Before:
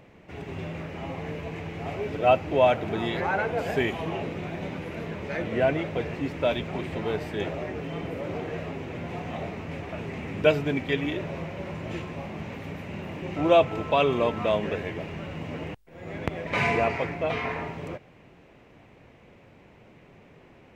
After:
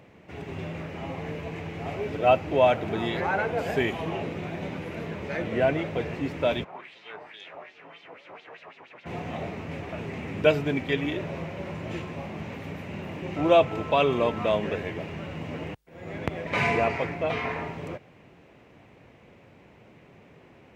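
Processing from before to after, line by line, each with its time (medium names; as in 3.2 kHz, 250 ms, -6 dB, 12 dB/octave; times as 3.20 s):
6.63–9.05 s: LFO band-pass sine 1.6 Hz -> 8.4 Hz 890–4400 Hz
whole clip: high-pass 57 Hz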